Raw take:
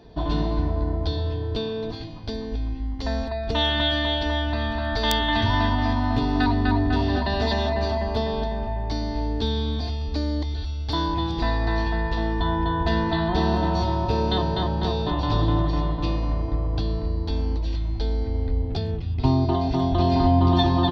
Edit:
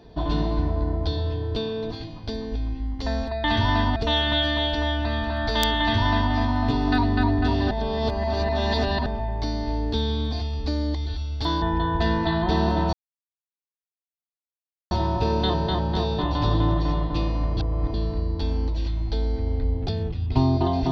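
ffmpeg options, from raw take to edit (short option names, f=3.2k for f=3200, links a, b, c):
-filter_complex "[0:a]asplit=9[a][b][c][d][e][f][g][h][i];[a]atrim=end=3.442[j];[b]atrim=start=5.288:end=5.812[k];[c]atrim=start=3.438:end=7.192[l];[d]atrim=start=7.188:end=8.542,asetpts=PTS-STARTPTS,areverse[m];[e]atrim=start=8.538:end=11.102[n];[f]atrim=start=12.478:end=13.79,asetpts=PTS-STARTPTS,afade=t=out:st=1.308:d=0.004:c=hsin,apad=pad_dur=1.98[o];[g]atrim=start=13.79:end=16.452,asetpts=PTS-STARTPTS,afade=t=in:d=0.004:c=hsin[p];[h]atrim=start=16.448:end=16.822,asetpts=PTS-STARTPTS,areverse[q];[i]atrim=start=16.818[r];[j][k]acrossfade=d=0.004:c1=hsin:c2=hsin[s];[s][l]acrossfade=d=0.004:c1=hsin:c2=hsin[t];[t][m]acrossfade=d=0.004:c1=hsin:c2=hsin[u];[u][n]acrossfade=d=0.004:c1=hsin:c2=hsin[v];[o][p]concat=n=2:v=0:a=1[w];[v][w]acrossfade=d=0.004:c1=hsin:c2=hsin[x];[x][q]acrossfade=d=0.004:c1=hsin:c2=hsin[y];[y][r]acrossfade=d=0.004:c1=hsin:c2=hsin"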